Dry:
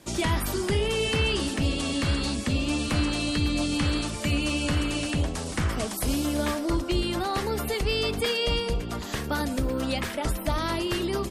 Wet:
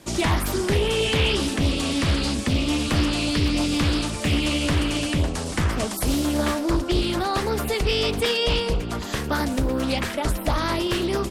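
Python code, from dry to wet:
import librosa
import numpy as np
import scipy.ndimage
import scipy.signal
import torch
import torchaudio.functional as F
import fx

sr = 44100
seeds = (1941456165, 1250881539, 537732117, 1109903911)

y = fx.doppler_dist(x, sr, depth_ms=0.42)
y = y * 10.0 ** (4.0 / 20.0)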